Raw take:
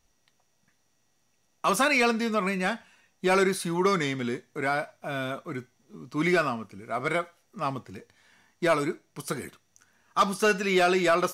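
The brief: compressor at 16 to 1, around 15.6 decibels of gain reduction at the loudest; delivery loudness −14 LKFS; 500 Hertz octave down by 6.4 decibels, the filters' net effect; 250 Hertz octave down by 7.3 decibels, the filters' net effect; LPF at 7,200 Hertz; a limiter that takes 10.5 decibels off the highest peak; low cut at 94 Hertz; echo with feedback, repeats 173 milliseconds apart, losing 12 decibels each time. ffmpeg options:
ffmpeg -i in.wav -af "highpass=94,lowpass=7200,equalizer=frequency=250:width_type=o:gain=-8.5,equalizer=frequency=500:width_type=o:gain=-6,acompressor=threshold=-34dB:ratio=16,alimiter=level_in=8dB:limit=-24dB:level=0:latency=1,volume=-8dB,aecho=1:1:173|346|519:0.251|0.0628|0.0157,volume=29dB" out.wav

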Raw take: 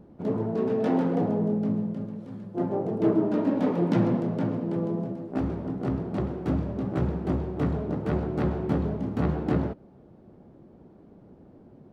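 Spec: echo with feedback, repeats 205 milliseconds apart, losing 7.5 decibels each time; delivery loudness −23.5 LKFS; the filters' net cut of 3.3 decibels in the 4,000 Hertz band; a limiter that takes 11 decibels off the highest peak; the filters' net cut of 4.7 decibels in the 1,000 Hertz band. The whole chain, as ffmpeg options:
ffmpeg -i in.wav -af "equalizer=frequency=1000:width_type=o:gain=-6.5,equalizer=frequency=4000:width_type=o:gain=-4,alimiter=limit=-22.5dB:level=0:latency=1,aecho=1:1:205|410|615|820|1025:0.422|0.177|0.0744|0.0312|0.0131,volume=7dB" out.wav

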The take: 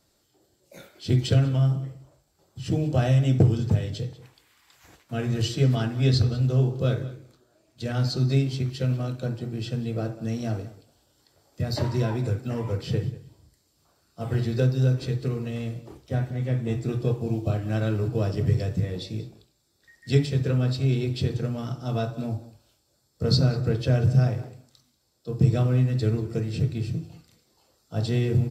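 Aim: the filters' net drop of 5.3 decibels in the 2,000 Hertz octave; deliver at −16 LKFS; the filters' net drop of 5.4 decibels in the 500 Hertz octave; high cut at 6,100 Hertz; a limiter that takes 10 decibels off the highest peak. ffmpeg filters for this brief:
ffmpeg -i in.wav -af "lowpass=6100,equalizer=frequency=500:width_type=o:gain=-6.5,equalizer=frequency=2000:width_type=o:gain=-7,volume=12.5dB,alimiter=limit=-5.5dB:level=0:latency=1" out.wav

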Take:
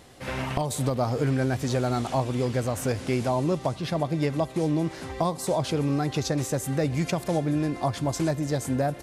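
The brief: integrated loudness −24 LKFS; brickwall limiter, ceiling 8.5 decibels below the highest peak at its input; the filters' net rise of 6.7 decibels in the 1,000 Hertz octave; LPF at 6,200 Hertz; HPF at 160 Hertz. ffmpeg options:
ffmpeg -i in.wav -af "highpass=160,lowpass=6200,equalizer=frequency=1000:width_type=o:gain=9,volume=4dB,alimiter=limit=-12dB:level=0:latency=1" out.wav

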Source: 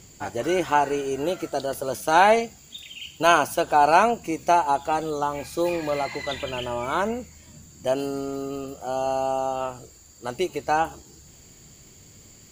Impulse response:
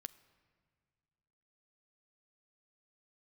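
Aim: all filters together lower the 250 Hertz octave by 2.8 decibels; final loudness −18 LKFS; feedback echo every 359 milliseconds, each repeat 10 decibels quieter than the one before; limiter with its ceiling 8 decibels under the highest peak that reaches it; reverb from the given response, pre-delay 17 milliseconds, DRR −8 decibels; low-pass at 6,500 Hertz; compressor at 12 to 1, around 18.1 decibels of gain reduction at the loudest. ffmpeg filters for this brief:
-filter_complex "[0:a]lowpass=6500,equalizer=frequency=250:width_type=o:gain=-4,acompressor=threshold=-31dB:ratio=12,alimiter=level_in=2dB:limit=-24dB:level=0:latency=1,volume=-2dB,aecho=1:1:359|718|1077|1436:0.316|0.101|0.0324|0.0104,asplit=2[link_01][link_02];[1:a]atrim=start_sample=2205,adelay=17[link_03];[link_02][link_03]afir=irnorm=-1:irlink=0,volume=13dB[link_04];[link_01][link_04]amix=inputs=2:normalize=0,volume=11dB"

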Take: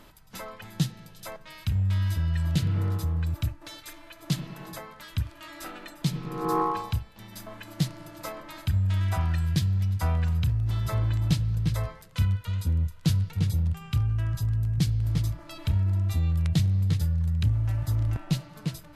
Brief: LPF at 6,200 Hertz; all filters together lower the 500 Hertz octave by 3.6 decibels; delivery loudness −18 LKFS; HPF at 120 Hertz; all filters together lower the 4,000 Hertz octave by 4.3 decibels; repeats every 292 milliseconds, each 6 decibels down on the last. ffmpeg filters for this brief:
ffmpeg -i in.wav -af "highpass=120,lowpass=6200,equalizer=frequency=500:width_type=o:gain=-4.5,equalizer=frequency=4000:width_type=o:gain=-4.5,aecho=1:1:292|584|876|1168|1460|1752:0.501|0.251|0.125|0.0626|0.0313|0.0157,volume=12.5dB" out.wav

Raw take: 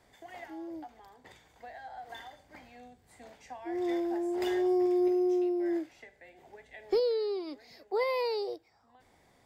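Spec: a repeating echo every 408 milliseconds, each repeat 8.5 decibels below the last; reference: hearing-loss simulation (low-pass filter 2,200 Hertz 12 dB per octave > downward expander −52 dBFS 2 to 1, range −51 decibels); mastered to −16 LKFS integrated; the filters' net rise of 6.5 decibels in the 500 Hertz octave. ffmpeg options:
ffmpeg -i in.wav -af "lowpass=2200,equalizer=frequency=500:width_type=o:gain=9,aecho=1:1:408|816|1224|1632:0.376|0.143|0.0543|0.0206,agate=range=-51dB:threshold=-52dB:ratio=2,volume=9dB" out.wav

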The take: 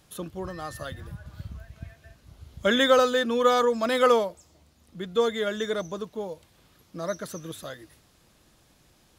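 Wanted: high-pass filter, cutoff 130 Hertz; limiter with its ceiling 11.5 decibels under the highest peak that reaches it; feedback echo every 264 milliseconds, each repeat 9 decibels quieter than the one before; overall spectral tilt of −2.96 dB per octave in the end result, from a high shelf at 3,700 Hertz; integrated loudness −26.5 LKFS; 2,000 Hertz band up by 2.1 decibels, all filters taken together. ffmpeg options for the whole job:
ffmpeg -i in.wav -af "highpass=130,equalizer=frequency=2000:width_type=o:gain=4.5,highshelf=frequency=3700:gain=-8.5,alimiter=limit=-19dB:level=0:latency=1,aecho=1:1:264|528|792|1056:0.355|0.124|0.0435|0.0152,volume=3.5dB" out.wav

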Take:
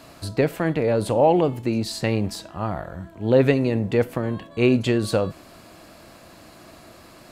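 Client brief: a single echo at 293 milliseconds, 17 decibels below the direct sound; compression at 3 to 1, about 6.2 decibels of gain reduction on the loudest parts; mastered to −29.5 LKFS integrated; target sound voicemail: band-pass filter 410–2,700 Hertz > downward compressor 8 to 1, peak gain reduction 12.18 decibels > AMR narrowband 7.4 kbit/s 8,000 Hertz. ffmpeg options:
ffmpeg -i in.wav -af "acompressor=threshold=-20dB:ratio=3,highpass=410,lowpass=2700,aecho=1:1:293:0.141,acompressor=threshold=-31dB:ratio=8,volume=8.5dB" -ar 8000 -c:a libopencore_amrnb -b:a 7400 out.amr

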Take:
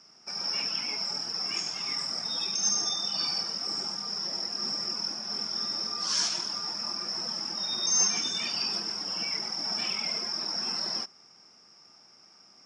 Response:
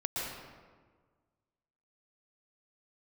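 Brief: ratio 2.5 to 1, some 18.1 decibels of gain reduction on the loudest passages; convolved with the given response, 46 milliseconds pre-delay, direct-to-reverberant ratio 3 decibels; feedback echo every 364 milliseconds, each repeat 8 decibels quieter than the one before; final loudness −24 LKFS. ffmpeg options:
-filter_complex "[0:a]acompressor=threshold=-50dB:ratio=2.5,aecho=1:1:364|728|1092|1456|1820:0.398|0.159|0.0637|0.0255|0.0102,asplit=2[link_01][link_02];[1:a]atrim=start_sample=2205,adelay=46[link_03];[link_02][link_03]afir=irnorm=-1:irlink=0,volume=-8dB[link_04];[link_01][link_04]amix=inputs=2:normalize=0,volume=16.5dB"

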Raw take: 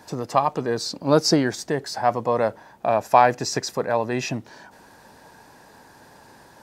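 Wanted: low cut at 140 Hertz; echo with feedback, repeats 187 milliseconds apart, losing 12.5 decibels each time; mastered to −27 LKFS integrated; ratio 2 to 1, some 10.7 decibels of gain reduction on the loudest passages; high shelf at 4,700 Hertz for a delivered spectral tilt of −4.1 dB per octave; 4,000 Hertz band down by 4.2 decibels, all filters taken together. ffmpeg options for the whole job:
ffmpeg -i in.wav -af "highpass=140,equalizer=frequency=4000:width_type=o:gain=-8.5,highshelf=frequency=4700:gain=3.5,acompressor=threshold=-29dB:ratio=2,aecho=1:1:187|374|561:0.237|0.0569|0.0137,volume=3dB" out.wav

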